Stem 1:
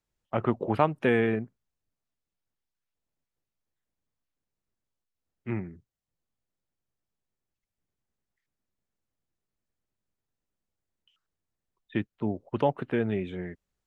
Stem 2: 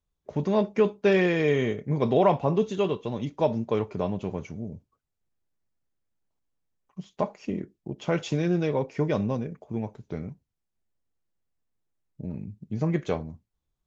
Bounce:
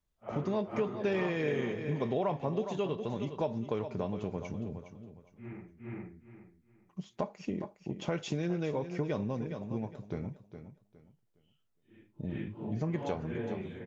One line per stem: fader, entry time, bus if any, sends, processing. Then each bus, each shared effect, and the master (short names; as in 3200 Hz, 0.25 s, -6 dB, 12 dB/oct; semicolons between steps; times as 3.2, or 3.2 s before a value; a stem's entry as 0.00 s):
-4.0 dB, 0.00 s, no send, echo send -4.5 dB, phase scrambler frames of 0.2 s; auto duck -24 dB, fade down 1.65 s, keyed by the second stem
-2.0 dB, 0.00 s, no send, echo send -12.5 dB, dry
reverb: off
echo: feedback echo 0.412 s, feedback 26%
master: compressor 2.5:1, threshold -32 dBFS, peak gain reduction 10 dB